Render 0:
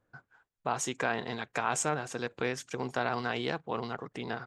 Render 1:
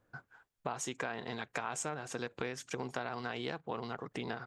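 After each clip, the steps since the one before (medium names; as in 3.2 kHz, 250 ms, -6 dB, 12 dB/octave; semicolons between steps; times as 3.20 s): compression 4:1, threshold -38 dBFS, peak gain reduction 12 dB; trim +2.5 dB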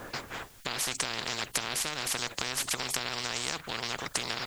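spectrum-flattening compressor 10:1; trim +8.5 dB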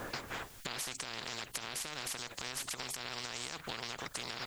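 peak limiter -18.5 dBFS, peak gain reduction 8.5 dB; compression 5:1, threshold -38 dBFS, peak gain reduction 10 dB; trim +1 dB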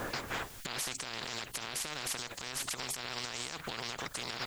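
peak limiter -29 dBFS, peak gain reduction 8 dB; trim +4.5 dB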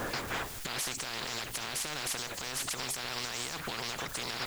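jump at every zero crossing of -40 dBFS; endings held to a fixed fall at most 170 dB/s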